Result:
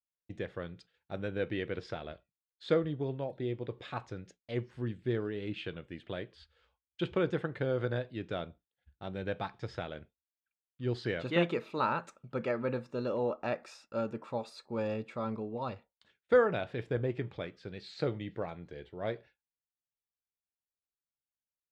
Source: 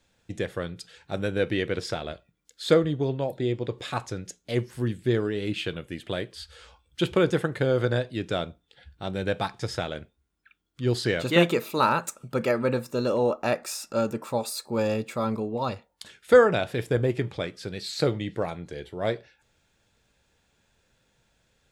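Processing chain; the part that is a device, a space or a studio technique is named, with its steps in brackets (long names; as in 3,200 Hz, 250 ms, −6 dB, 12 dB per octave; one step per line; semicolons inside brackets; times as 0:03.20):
hearing-loss simulation (low-pass filter 3,300 Hz 12 dB per octave; downward expander −42 dBFS)
level −8.5 dB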